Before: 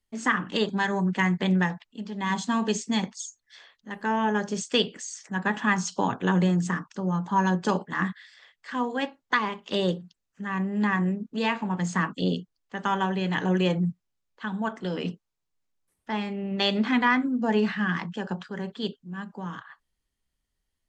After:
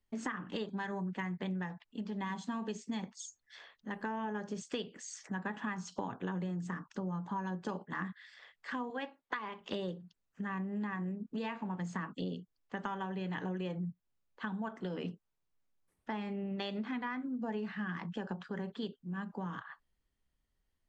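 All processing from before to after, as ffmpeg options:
-filter_complex "[0:a]asettb=1/sr,asplit=3[s0][s1][s2];[s0]atrim=end=8.904[s3];[s1]atrim=start=8.9:end=9.61,asetpts=PTS-STARTPTS,afade=t=in:d=0.004:c=qsin,afade=t=out:st=0.706:d=0.004:c=qsin,lowpass=3600,aemphasis=mode=production:type=bsi[s4];[s2]atrim=start=9.606[s5];[s3][s4]acrossfade=d=0.004:c1=hsin:c2=qsin[s6];[s6][s5]acrossfade=d=0.004:c1=qsin:c2=hsin,highshelf=f=3400:g=-9.5,acompressor=threshold=0.0158:ratio=6"

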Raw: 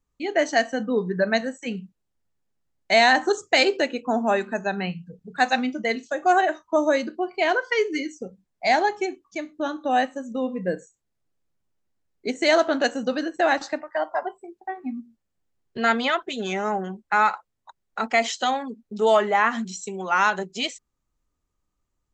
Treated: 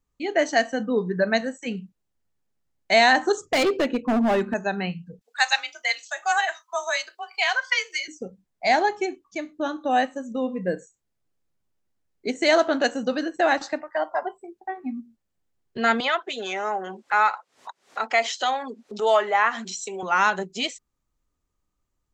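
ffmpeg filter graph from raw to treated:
-filter_complex "[0:a]asettb=1/sr,asplit=3[s0][s1][s2];[s0]atrim=end=3.454[s3];[s1]atrim=start=3.45:end=4.54,asetpts=PTS-STARTPTS,afade=t=in:d=0.004:c=qsin,afade=t=out:st=1.086:d=0.004:c=qsin,lowpass=f=3700:p=1,lowshelf=f=300:g=11.5,asoftclip=type=hard:threshold=0.133[s4];[s2]atrim=start=4.536[s5];[s3][s4]acrossfade=d=0.004:c1=hsin:c2=qsin[s6];[s6][s5]acrossfade=d=0.004:c1=qsin:c2=hsin,asettb=1/sr,asplit=3[s7][s8][s9];[s7]atrim=end=5.214[s10];[s8]atrim=start=5.21:end=8.08,asetpts=PTS-STARTPTS,afade=t=in:d=0.004:c=qsin,afade=t=out:st=2.866:d=0.004:c=qsin,highpass=f=640:w=0.5412,highpass=f=640:w=1.3066,tiltshelf=f=1300:g=-8,afreqshift=31[s11];[s9]atrim=start=8.076[s12];[s10][s11]acrossfade=d=0.004:c1=hsin:c2=qsin[s13];[s13][s12]acrossfade=d=0.004:c1=qsin:c2=hsin,asettb=1/sr,asplit=3[s14][s15][s16];[s14]atrim=end=16.004[s17];[s15]atrim=start=16:end=20.03,asetpts=PTS-STARTPTS,afade=t=in:d=0.004:c=qsin,afade=t=out:st=4.026:d=0.004:c=qsin,highpass=460,lowpass=7200,acompressor=mode=upward:threshold=0.0562:ratio=2.5:attack=3.2:release=140:knee=2.83:detection=peak[s18];[s16]atrim=start=20.026[s19];[s17][s18]acrossfade=d=0.004:c1=hsin:c2=qsin[s20];[s20][s19]acrossfade=d=0.004:c1=qsin:c2=hsin"

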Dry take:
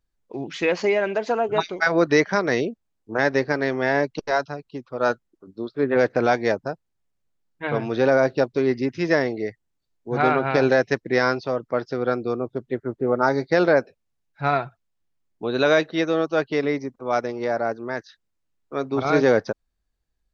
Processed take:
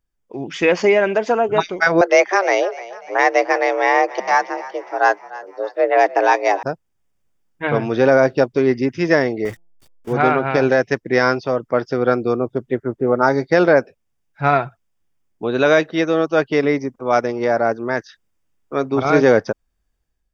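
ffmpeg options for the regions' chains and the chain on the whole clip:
-filter_complex "[0:a]asettb=1/sr,asplit=3[s0][s1][s2];[s0]atrim=end=2.014[s3];[s1]atrim=start=2.01:end=6.63,asetpts=PTS-STARTPTS,afade=t=in:d=0.004:c=qsin,afade=t=out:st=4.616:d=0.004:c=qsin,asplit=5[s4][s5][s6][s7][s8];[s5]adelay=298,afreqshift=37,volume=0.126[s9];[s6]adelay=596,afreqshift=74,volume=0.0646[s10];[s7]adelay=894,afreqshift=111,volume=0.0327[s11];[s8]adelay=1192,afreqshift=148,volume=0.0168[s12];[s4][s9][s10][s11][s12]amix=inputs=5:normalize=0,atrim=end_sample=203742,afreqshift=190[s13];[s2]atrim=start=6.626[s14];[s3][s13]acrossfade=d=0.004:c1=hsin:c2=qsin[s15];[s15][s14]acrossfade=d=0.004:c1=qsin:c2=hsin,asettb=1/sr,asplit=3[s16][s17][s18];[s16]atrim=end=9.454[s19];[s17]atrim=start=9.45:end=10.13,asetpts=PTS-STARTPTS,afade=t=in:d=0.004:c=qsin,afade=t=out:st=0.676:d=0.004:c=qsin,aeval=exprs='val(0)+0.5*0.0178*sgn(val(0))':c=same,bandreject=f=170.5:t=h:w=4,bandreject=f=341:t=h:w=4,bandreject=f=511.5:t=h:w=4,bandreject=f=682:t=h:w=4,bandreject=f=852.5:t=h:w=4,bandreject=f=1023:t=h:w=4,agate=range=0.178:threshold=0.0141:ratio=16:release=100:detection=peak[s20];[s18]atrim=start=10.126[s21];[s19][s20]acrossfade=d=0.004:c1=hsin:c2=qsin[s22];[s22][s21]acrossfade=d=0.004:c1=qsin:c2=hsin,bandreject=f=4100:w=5.1,dynaudnorm=f=130:g=7:m=2.51"

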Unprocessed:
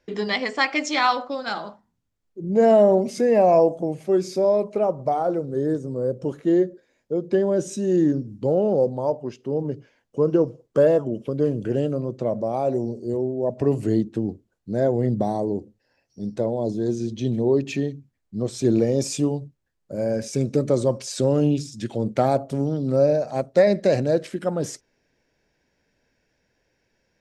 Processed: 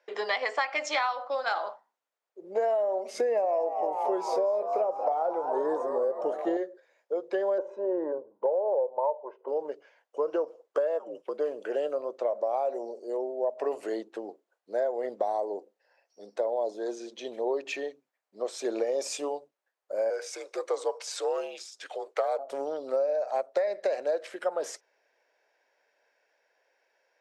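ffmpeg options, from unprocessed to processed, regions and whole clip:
-filter_complex "[0:a]asettb=1/sr,asplit=3[s0][s1][s2];[s0]atrim=end=3.144[s3];[s1]atrim=start=3.14:end=6.57,asetpts=PTS-STARTPTS,afade=t=in:d=0.004:c=qsin,afade=t=out:st=3.426:d=0.004:c=qsin,lowshelf=f=330:g=12,asplit=7[s4][s5][s6][s7][s8][s9][s10];[s5]adelay=228,afreqshift=99,volume=0.224[s11];[s6]adelay=456,afreqshift=198,volume=0.123[s12];[s7]adelay=684,afreqshift=297,volume=0.0676[s13];[s8]adelay=912,afreqshift=396,volume=0.0372[s14];[s9]adelay=1140,afreqshift=495,volume=0.0204[s15];[s10]adelay=1368,afreqshift=594,volume=0.0112[s16];[s4][s11][s12][s13][s14][s15][s16]amix=inputs=7:normalize=0,atrim=end_sample=151263[s17];[s2]atrim=start=6.566[s18];[s3][s17]acrossfade=d=0.004:c1=hsin:c2=qsin[s19];[s19][s18]acrossfade=d=0.004:c1=qsin:c2=hsin,asettb=1/sr,asplit=3[s20][s21][s22];[s20]atrim=end=7.584[s23];[s21]atrim=start=7.58:end=9.48,asetpts=PTS-STARTPTS,afade=t=in:d=0.004:c=qsin,afade=t=out:st=1.896:d=0.004:c=qsin,lowpass=f=890:t=q:w=3,aecho=1:1:2:0.59,atrim=end_sample=83790[s24];[s22]atrim=start=9.476[s25];[s23][s24]acrossfade=d=0.004:c1=hsin:c2=qsin[s26];[s26][s25]acrossfade=d=0.004:c1=qsin:c2=hsin,asettb=1/sr,asplit=3[s27][s28][s29];[s27]atrim=end=10.994[s30];[s28]atrim=start=10.99:end=11.39,asetpts=PTS-STARTPTS,afade=t=in:d=0.004:c=qsin,afade=t=out:st=0.396:d=0.004:c=qsin,afreqshift=-55,agate=range=0.251:threshold=0.0141:ratio=16:release=100:detection=peak[s31];[s29]atrim=start=11.386[s32];[s30][s31]acrossfade=d=0.004:c1=hsin:c2=qsin[s33];[s33][s32]acrossfade=d=0.004:c1=qsin:c2=hsin,asettb=1/sr,asplit=3[s34][s35][s36];[s34]atrim=end=20.104[s37];[s35]atrim=start=20.1:end=22.39,asetpts=PTS-STARTPTS,afade=t=in:d=0.004:c=qsin,afade=t=out:st=2.286:d=0.004:c=qsin,highpass=f=520:w=0.5412,highpass=f=520:w=1.3066,afreqshift=-76[s38];[s36]atrim=start=22.386[s39];[s37][s38]acrossfade=d=0.004:c1=hsin:c2=qsin[s40];[s40][s39]acrossfade=d=0.004:c1=qsin:c2=hsin,highpass=f=560:w=0.5412,highpass=f=560:w=1.3066,highshelf=f=2500:g=-12,acompressor=threshold=0.0355:ratio=16,volume=1.78"

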